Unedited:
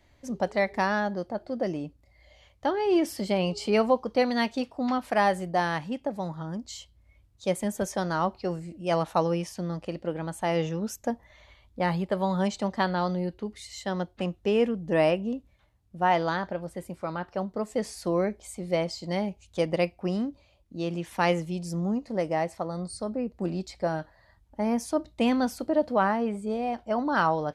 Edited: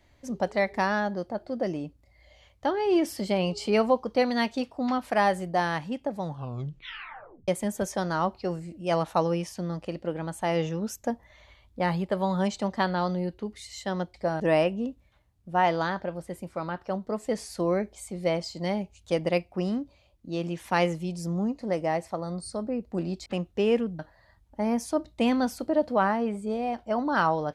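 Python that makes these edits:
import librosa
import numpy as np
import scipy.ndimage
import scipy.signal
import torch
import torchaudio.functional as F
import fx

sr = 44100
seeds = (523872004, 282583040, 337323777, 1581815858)

y = fx.edit(x, sr, fx.tape_stop(start_s=6.21, length_s=1.27),
    fx.swap(start_s=14.14, length_s=0.73, other_s=23.73, other_length_s=0.26), tone=tone)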